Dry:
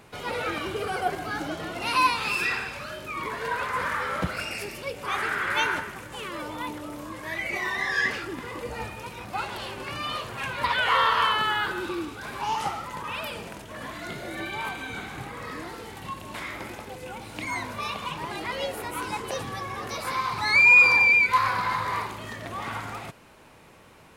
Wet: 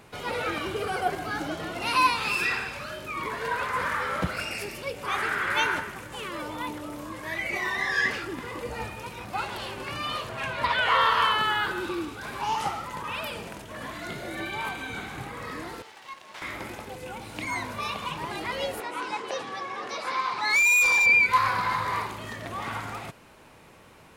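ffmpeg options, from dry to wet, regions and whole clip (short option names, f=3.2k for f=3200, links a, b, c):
-filter_complex "[0:a]asettb=1/sr,asplit=3[a][b][c];[a]atrim=end=10.294[d];[b]atrim=start=10.29:end=11.01,asetpts=PTS-STARTPTS,afade=t=in:d=0.004:c=qsin,afade=t=out:st=0.716:d=0.004:c=qsin,highshelf=f=10k:g=-9,aeval=exprs='val(0)+0.01*sin(2*PI*650*n/s)':c=same[e];[c]atrim=start=11.006[f];[d][e]acrossfade=d=0.004:c1=hsin:c2=qsin[g];[g][f]acrossfade=d=0.004:c1=qsin:c2=hsin,asettb=1/sr,asplit=3[h][i][j];[h]atrim=end=15.824[k];[i]atrim=start=15.82:end=16.42,asetpts=PTS-STARTPTS,afade=t=in:d=0.004:c=qsin,afade=t=out:st=0.596:d=0.004:c=qsin,acrossover=split=470 7100:gain=0.158 1 0.2[l][m][n];[l][m][n]amix=inputs=3:normalize=0,aeval=exprs='max(val(0),0)':c=same,highpass=f=270:p=1[o];[j]atrim=start=16.416[p];[k][o]acrossfade=d=0.004:c1=hsin:c2=qsin[q];[q][p]acrossfade=d=0.004:c1=qsin:c2=hsin,asettb=1/sr,asplit=3[r][s][t];[r]atrim=end=18.804[u];[s]atrim=start=18.8:end=21.06,asetpts=PTS-STARTPTS,afade=t=in:d=0.004:c=qsin,afade=t=out:st=2.256:d=0.004:c=qsin,highpass=300,lowpass=5.8k,asoftclip=type=hard:threshold=-18.5dB[v];[t]atrim=start=21.056[w];[u][v]acrossfade=d=0.004:c1=hsin:c2=qsin[x];[x][w]acrossfade=d=0.004:c1=qsin:c2=hsin"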